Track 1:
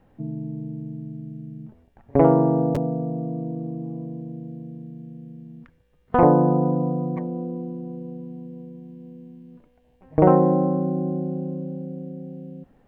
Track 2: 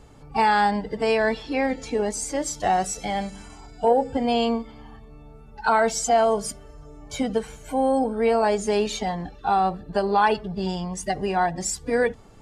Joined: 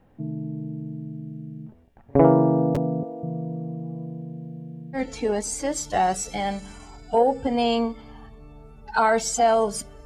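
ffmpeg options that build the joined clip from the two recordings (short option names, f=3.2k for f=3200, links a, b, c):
-filter_complex "[0:a]asettb=1/sr,asplit=3[a][b][c];[a]atrim=end=3.034[d];[b]atrim=start=3.03:end=4.99,asetpts=PTS-STARTPTS,afade=t=in:d=0.004:c=qsin,afade=t=out:st=1.956:d=0.004:c=qsin,acrossover=split=300[e][f];[e]adelay=200[g];[g][f]amix=inputs=2:normalize=0,atrim=end_sample=86436[h];[c]atrim=start=4.986[i];[d][h]acrossfade=d=0.004:c1=hsin:c2=qsin[j];[j][i]acrossfade=d=0.004:c1=qsin:c2=hsin,apad=whole_dur=10.05,atrim=end=10.05,atrim=end=4.99,asetpts=PTS-STARTPTS[k];[1:a]atrim=start=1.63:end=6.75,asetpts=PTS-STARTPTS[l];[k][l]acrossfade=d=0.06:c1=tri:c2=tri"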